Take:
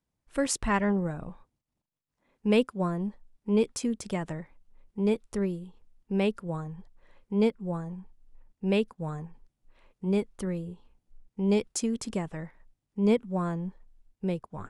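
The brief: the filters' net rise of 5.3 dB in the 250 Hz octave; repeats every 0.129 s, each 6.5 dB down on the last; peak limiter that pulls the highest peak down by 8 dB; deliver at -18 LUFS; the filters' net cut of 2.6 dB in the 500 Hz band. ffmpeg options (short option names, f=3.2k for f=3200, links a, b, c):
-af "equalizer=f=250:t=o:g=8,equalizer=f=500:t=o:g=-6,alimiter=limit=-17.5dB:level=0:latency=1,aecho=1:1:129|258|387|516|645|774:0.473|0.222|0.105|0.0491|0.0231|0.0109,volume=10.5dB"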